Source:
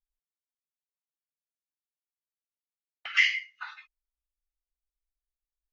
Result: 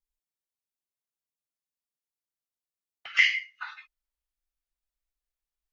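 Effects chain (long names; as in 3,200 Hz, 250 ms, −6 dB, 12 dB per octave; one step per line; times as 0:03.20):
parametric band 1,800 Hz −4.5 dB 2.1 octaves, from 0:03.19 +2 dB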